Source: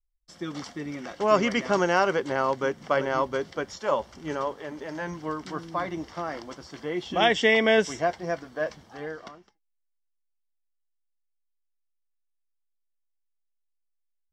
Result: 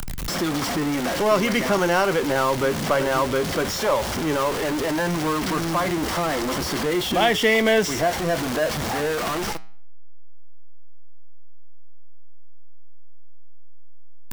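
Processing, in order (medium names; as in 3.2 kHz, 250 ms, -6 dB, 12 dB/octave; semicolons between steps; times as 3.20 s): jump at every zero crossing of -23.5 dBFS; flange 0.16 Hz, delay 4.3 ms, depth 4.3 ms, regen -89%; three bands compressed up and down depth 40%; trim +5.5 dB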